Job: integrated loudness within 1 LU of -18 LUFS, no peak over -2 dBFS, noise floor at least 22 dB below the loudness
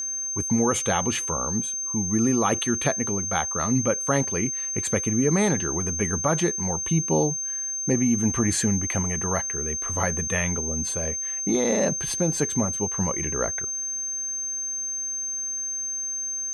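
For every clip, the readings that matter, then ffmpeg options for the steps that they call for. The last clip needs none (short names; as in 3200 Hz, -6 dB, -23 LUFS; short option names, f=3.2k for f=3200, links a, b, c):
steady tone 6300 Hz; tone level -27 dBFS; loudness -24.0 LUFS; peak -8.0 dBFS; loudness target -18.0 LUFS
-> -af "bandreject=f=6.3k:w=30"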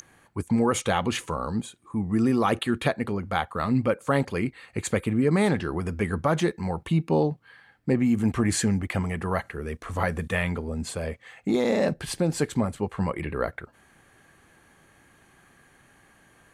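steady tone none; loudness -26.5 LUFS; peak -8.5 dBFS; loudness target -18.0 LUFS
-> -af "volume=8.5dB,alimiter=limit=-2dB:level=0:latency=1"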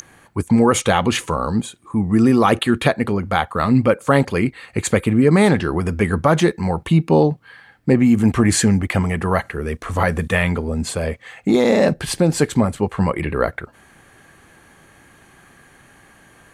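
loudness -18.0 LUFS; peak -2.0 dBFS; noise floor -51 dBFS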